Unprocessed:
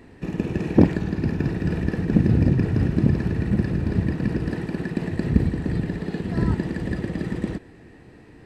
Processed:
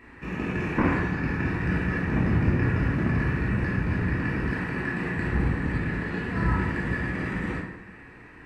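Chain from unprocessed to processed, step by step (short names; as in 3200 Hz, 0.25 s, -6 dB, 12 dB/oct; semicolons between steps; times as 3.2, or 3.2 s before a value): soft clip -12.5 dBFS, distortion -13 dB; band shelf 1600 Hz +11.5 dB; plate-style reverb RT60 0.93 s, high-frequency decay 0.6×, DRR -5 dB; gain -8.5 dB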